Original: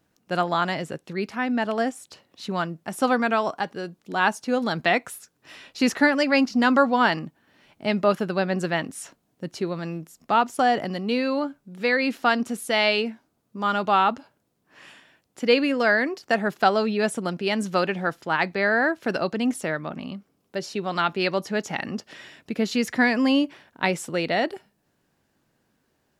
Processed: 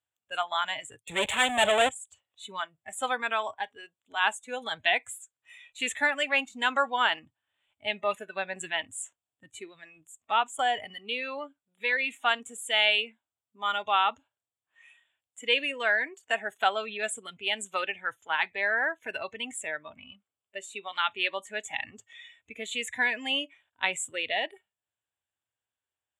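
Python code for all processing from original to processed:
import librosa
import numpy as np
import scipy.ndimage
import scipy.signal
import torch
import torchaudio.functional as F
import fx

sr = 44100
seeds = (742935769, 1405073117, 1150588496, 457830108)

y = fx.chain(x, sr, fx.leveller(passes=5),
    fx.peak_eq(hz=570.0, db=13.0, octaves=0.24),
    fx.band_widen(depth_pct=70), at=(0.98, 1.89))
y = scipy.signal.sosfilt(scipy.signal.butter(2, 55.0, 'highpass', fs=sr, output='sos'), y)
y = fx.noise_reduce_blind(y, sr, reduce_db=17)
y = fx.curve_eq(y, sr, hz=(110.0, 150.0, 240.0, 730.0, 1000.0, 2000.0, 3500.0, 5100.0, 7500.0, 13000.0), db=(0, -14, -15, 1, 2, 4, 12, -26, 14, -6))
y = y * librosa.db_to_amplitude(-7.0)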